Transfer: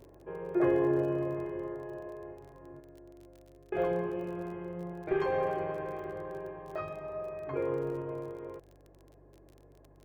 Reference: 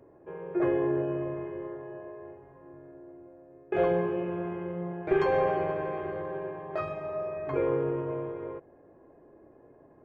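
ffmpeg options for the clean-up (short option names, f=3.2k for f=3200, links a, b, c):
-af "adeclick=t=4,bandreject=f=48.4:t=h:w=4,bandreject=f=96.8:t=h:w=4,bandreject=f=145.2:t=h:w=4,asetnsamples=n=441:p=0,asendcmd='2.8 volume volume 5dB',volume=0dB"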